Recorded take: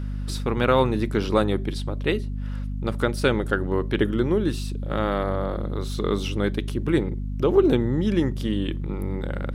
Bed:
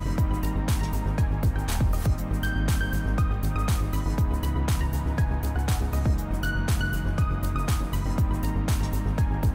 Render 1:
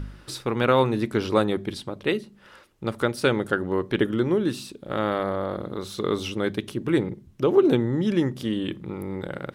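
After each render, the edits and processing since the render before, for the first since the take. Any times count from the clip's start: de-hum 50 Hz, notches 5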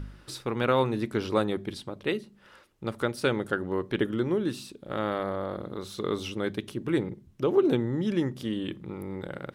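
trim -4.5 dB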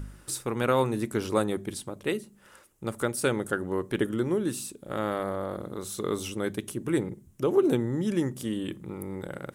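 resonant high shelf 5.9 kHz +10.5 dB, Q 1.5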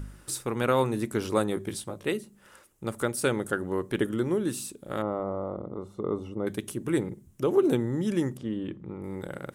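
1.55–2.06 s: doubling 18 ms -5.5 dB; 5.02–6.47 s: Savitzky-Golay filter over 65 samples; 8.37–9.04 s: tape spacing loss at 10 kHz 28 dB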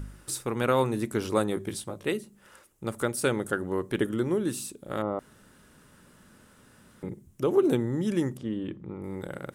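5.19–7.03 s: room tone

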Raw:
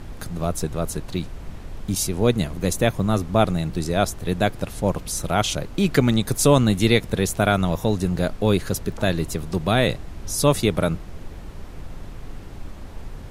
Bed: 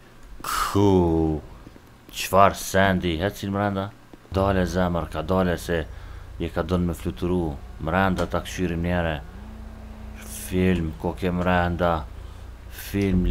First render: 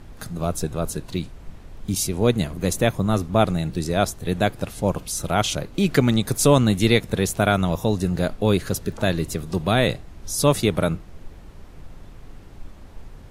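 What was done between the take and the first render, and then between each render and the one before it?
noise print and reduce 6 dB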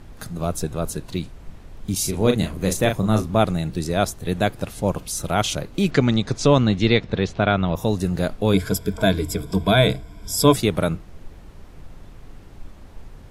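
2.00–3.38 s: doubling 37 ms -6 dB; 5.90–7.75 s: low-pass 6.9 kHz -> 4 kHz 24 dB/octave; 8.53–10.56 s: rippled EQ curve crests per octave 1.7, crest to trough 14 dB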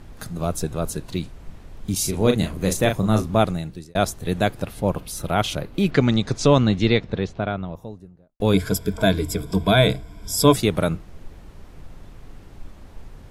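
3.40–3.95 s: fade out; 4.62–5.98 s: peaking EQ 6.9 kHz -8 dB 1 oct; 6.59–8.40 s: studio fade out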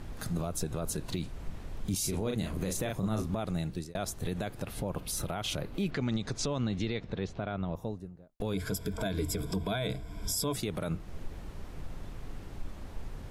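compression 2:1, threshold -29 dBFS, peak gain reduction 11.5 dB; peak limiter -22.5 dBFS, peak gain reduction 10.5 dB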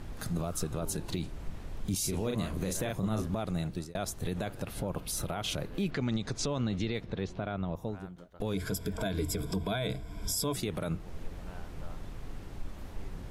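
add bed -30.5 dB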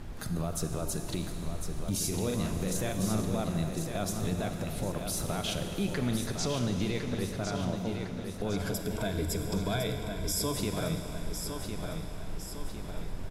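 on a send: feedback delay 1056 ms, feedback 50%, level -7 dB; on the sum: Schroeder reverb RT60 3.5 s, combs from 33 ms, DRR 6.5 dB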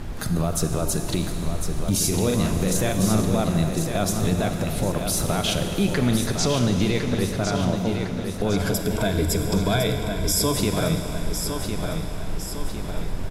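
trim +9.5 dB

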